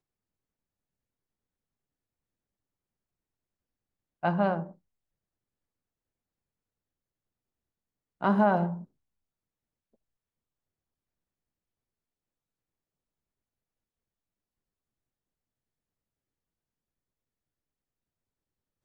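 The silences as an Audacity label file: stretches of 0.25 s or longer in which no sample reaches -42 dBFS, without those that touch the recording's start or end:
4.710000	8.210000	silence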